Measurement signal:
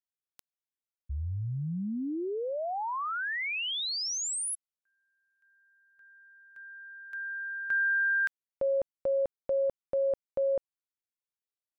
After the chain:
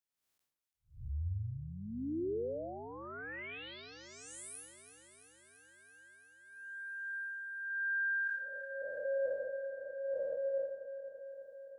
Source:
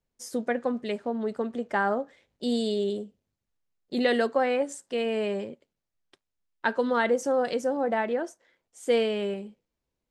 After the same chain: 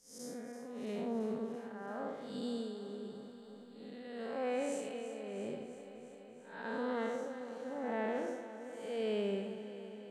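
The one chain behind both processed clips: time blur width 0.243 s; reverse; compressor, threshold -36 dBFS; reverse; tremolo 0.87 Hz, depth 77%; echo with dull and thin repeats by turns 0.168 s, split 1400 Hz, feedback 84%, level -10 dB; gain +2.5 dB

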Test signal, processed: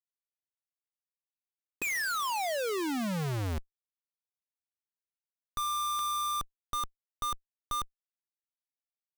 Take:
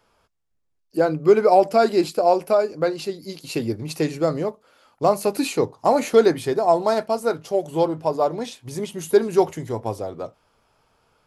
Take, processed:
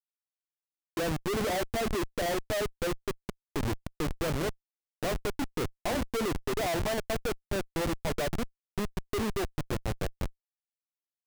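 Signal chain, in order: LPF 1900 Hz 12 dB/oct; Schmitt trigger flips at -24 dBFS; gain -7.5 dB

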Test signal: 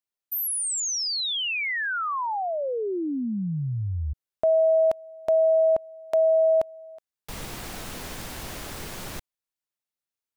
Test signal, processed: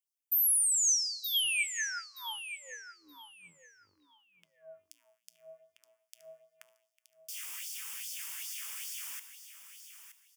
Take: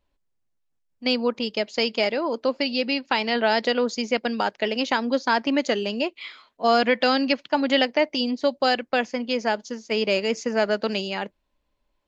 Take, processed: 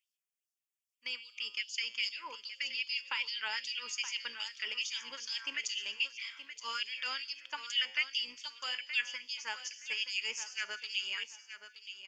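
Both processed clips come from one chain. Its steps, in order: octaver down 2 oct, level -3 dB; resonant high shelf 2300 Hz +14 dB, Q 1.5; limiter -6 dBFS; fixed phaser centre 1700 Hz, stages 4; resonator 59 Hz, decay 0.93 s, harmonics odd, mix 60%; LFO high-pass sine 2.5 Hz 810–4700 Hz; feedback echo 0.923 s, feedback 21%, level -11 dB; gain -5.5 dB

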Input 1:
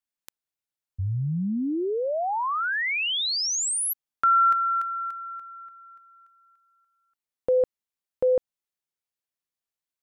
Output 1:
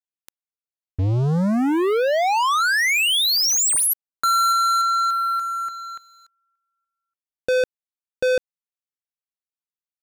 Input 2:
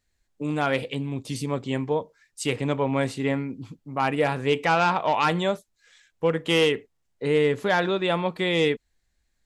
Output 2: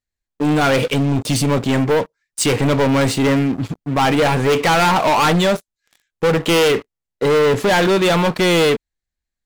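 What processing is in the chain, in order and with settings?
sample leveller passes 5; gain -2 dB

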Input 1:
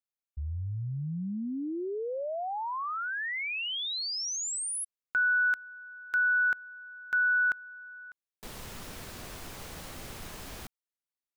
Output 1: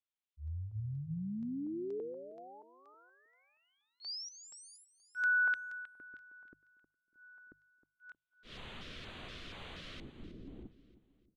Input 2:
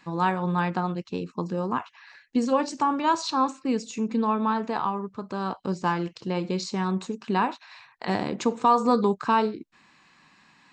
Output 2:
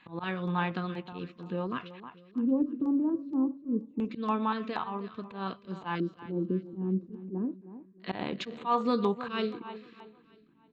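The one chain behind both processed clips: LFO low-pass square 0.25 Hz 310–3400 Hz; auto swell 0.11 s; feedback echo 0.314 s, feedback 40%, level -14.5 dB; LFO notch square 2.1 Hz 850–5300 Hz; notches 50/100/150 Hz; gain -5 dB

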